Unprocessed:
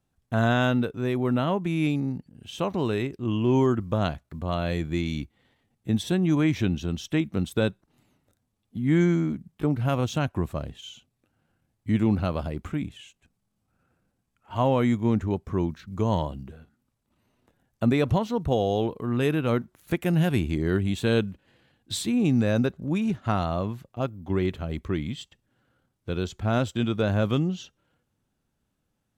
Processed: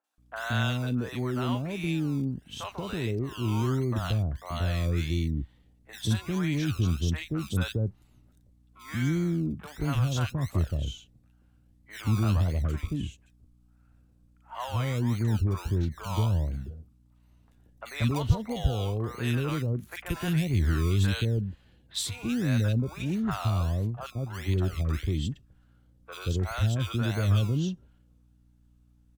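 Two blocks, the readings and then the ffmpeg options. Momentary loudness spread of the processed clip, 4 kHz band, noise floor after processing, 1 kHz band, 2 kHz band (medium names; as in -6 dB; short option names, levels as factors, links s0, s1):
11 LU, -0.5 dB, -62 dBFS, -6.0 dB, -3.0 dB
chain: -filter_complex "[0:a]asubboost=boost=3.5:cutoff=96,acrossover=split=140|1200[s0][s1][s2];[s0]acrusher=samples=29:mix=1:aa=0.000001:lfo=1:lforange=17.4:lforate=1.5[s3];[s1]alimiter=level_in=1.06:limit=0.0631:level=0:latency=1,volume=0.944[s4];[s3][s4][s2]amix=inputs=3:normalize=0,aeval=exprs='val(0)+0.001*(sin(2*PI*60*n/s)+sin(2*PI*2*60*n/s)/2+sin(2*PI*3*60*n/s)/3+sin(2*PI*4*60*n/s)/4+sin(2*PI*5*60*n/s)/5)':c=same,acrossover=split=600|2000[s5][s6][s7];[s7]adelay=40[s8];[s5]adelay=180[s9];[s9][s6][s8]amix=inputs=3:normalize=0"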